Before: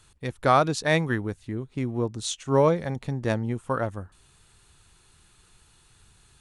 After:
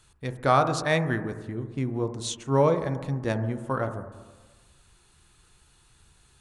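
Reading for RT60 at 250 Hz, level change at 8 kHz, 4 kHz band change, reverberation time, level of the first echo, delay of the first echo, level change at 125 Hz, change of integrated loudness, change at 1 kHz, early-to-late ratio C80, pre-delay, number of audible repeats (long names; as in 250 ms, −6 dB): 1.3 s, −2.0 dB, −2.0 dB, 1.3 s, no echo audible, no echo audible, 0.0 dB, −1.0 dB, −0.5 dB, 12.0 dB, 7 ms, no echo audible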